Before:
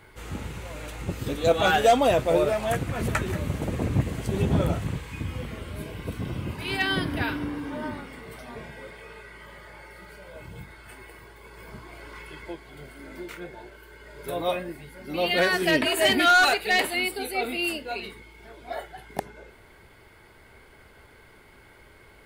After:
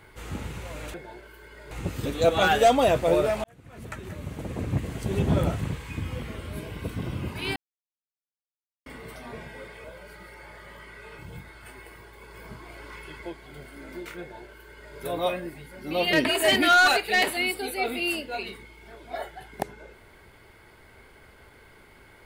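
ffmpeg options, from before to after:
-filter_complex "[0:a]asplit=9[a][b][c][d][e][f][g][h][i];[a]atrim=end=0.942[j];[b]atrim=start=13.428:end=14.202[k];[c]atrim=start=0.938:end=2.67,asetpts=PTS-STARTPTS,afade=t=out:st=1.728:d=0.004:c=hsin[l];[d]atrim=start=2.67:end=6.79,asetpts=PTS-STARTPTS,afade=t=in:d=1.92,afade=t=out:st=4.116:d=0.004:c=hsin[m];[e]atrim=start=6.79:end=8.09,asetpts=PTS-STARTPTS,volume=0[n];[f]atrim=start=8.09:end=9.072,asetpts=PTS-STARTPTS,afade=t=in:d=0.004:c=hsin[o];[g]atrim=start=9.068:end=10.412,asetpts=PTS-STARTPTS,areverse[p];[h]atrim=start=10.408:end=15.362[q];[i]atrim=start=15.698[r];[j][k]acrossfade=d=0.004:c1=hsin:c2=hsin[s];[l][m][n][o]concat=n=4:v=0:a=1[t];[s][t]acrossfade=d=0.004:c1=hsin:c2=hsin[u];[u][p]acrossfade=d=0.004:c1=hsin:c2=hsin[v];[v][q]acrossfade=d=0.004:c1=hsin:c2=hsin[w];[w][r]acrossfade=d=0.004:c1=hsin:c2=hsin"

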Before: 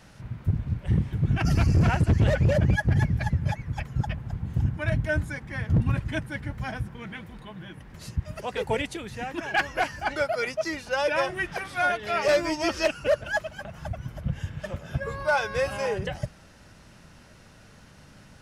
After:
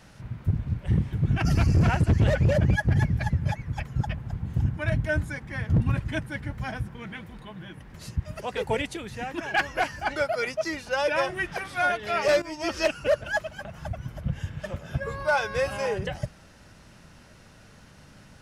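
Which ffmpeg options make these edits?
-filter_complex "[0:a]asplit=2[a][b];[a]atrim=end=12.42,asetpts=PTS-STARTPTS,afade=t=out:st=12.416:d=0.004:c=hsin:silence=0.199526[c];[b]atrim=start=12.42,asetpts=PTS-STARTPTS,afade=t=in:d=0.39:silence=0.199526[d];[c][d]concat=n=2:v=0:a=1"

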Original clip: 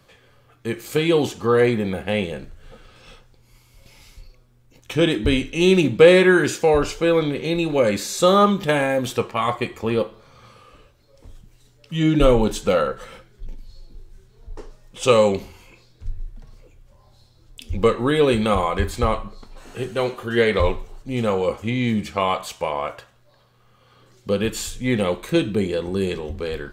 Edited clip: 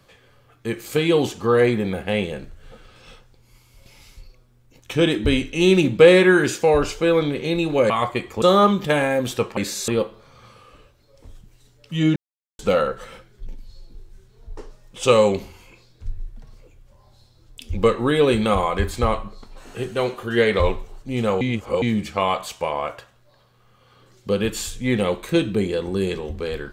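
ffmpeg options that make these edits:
-filter_complex "[0:a]asplit=9[a][b][c][d][e][f][g][h][i];[a]atrim=end=7.902[j];[b]atrim=start=9.358:end=9.882[k];[c]atrim=start=8.208:end=9.362[l];[d]atrim=start=7.898:end=8.212[m];[e]atrim=start=9.878:end=12.16,asetpts=PTS-STARTPTS,afade=t=out:st=2.278:d=0.004:c=hsin[n];[f]atrim=start=12.16:end=12.59,asetpts=PTS-STARTPTS,volume=0[o];[g]atrim=start=12.59:end=21.412,asetpts=PTS-STARTPTS,afade=t=in:d=0.004:c=hsin[p];[h]atrim=start=21.408:end=21.822,asetpts=PTS-STARTPTS,areverse[q];[i]atrim=start=21.818[r];[j][k]acrossfade=d=0.004:c1=hsin:c2=hsin[s];[s][l]acrossfade=d=0.004:c1=hsin:c2=hsin[t];[t][m]acrossfade=d=0.004:c1=hsin:c2=hsin[u];[n][o][p]concat=n=3:v=0:a=1[v];[u][v]acrossfade=d=0.004:c1=hsin:c2=hsin[w];[w][q]acrossfade=d=0.004:c1=hsin:c2=hsin[x];[x][r]acrossfade=d=0.004:c1=hsin:c2=hsin"

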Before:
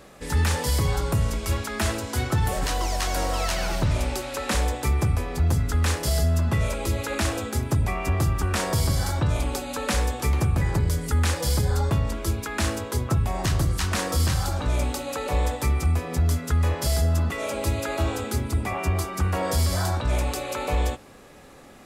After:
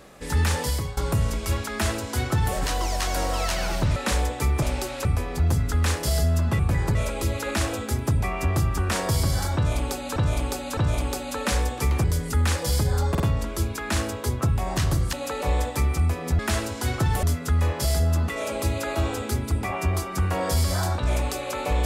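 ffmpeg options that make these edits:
-filter_complex "[0:a]asplit=15[a][b][c][d][e][f][g][h][i][j][k][l][m][n][o];[a]atrim=end=0.97,asetpts=PTS-STARTPTS,afade=t=out:st=0.62:d=0.35:silence=0.16788[p];[b]atrim=start=0.97:end=3.962,asetpts=PTS-STARTPTS,afade=t=in:d=0.004:c=hsin:silence=0.16788[q];[c]atrim=start=4.388:end=5.052[r];[d]atrim=start=3.958:end=4.392[s];[e]atrim=start=5.048:end=6.592[t];[f]atrim=start=10.458:end=10.822[u];[g]atrim=start=6.588:end=9.802[v];[h]atrim=start=9.188:end=9.802[w];[i]atrim=start=9.188:end=10.462[x];[j]atrim=start=10.818:end=11.932[y];[k]atrim=start=11.878:end=11.932[z];[l]atrim=start=11.878:end=13.812[aa];[m]atrim=start=14.988:end=16.252[ab];[n]atrim=start=1.708:end=2.552[ac];[o]atrim=start=16.248[ad];[p][q]concat=n=2:v=0:a=1[ae];[ae][r]acrossfade=d=0.004:c1=hsin:c2=hsin[af];[af][s]acrossfade=d=0.004:c1=hsin:c2=hsin[ag];[ag][t]acrossfade=d=0.004:c1=hsin:c2=hsin[ah];[ah][u]acrossfade=d=0.004:c1=hsin:c2=hsin[ai];[ai][v]acrossfade=d=0.004:c1=hsin:c2=hsin[aj];[aj][w]acrossfade=d=0.004:c1=hsin:c2=hsin[ak];[ak][x]acrossfade=d=0.004:c1=hsin:c2=hsin[al];[al][y]acrossfade=d=0.004:c1=hsin:c2=hsin[am];[am][z]acrossfade=d=0.004:c1=hsin:c2=hsin[an];[an][aa]acrossfade=d=0.004:c1=hsin:c2=hsin[ao];[ao][ab]acrossfade=d=0.004:c1=hsin:c2=hsin[ap];[ap][ac]acrossfade=d=0.004:c1=hsin:c2=hsin[aq];[aq][ad]acrossfade=d=0.004:c1=hsin:c2=hsin"

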